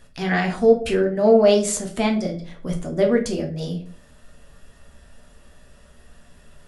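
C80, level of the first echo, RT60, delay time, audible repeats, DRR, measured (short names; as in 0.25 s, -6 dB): 16.0 dB, none, 0.45 s, none, none, 1.5 dB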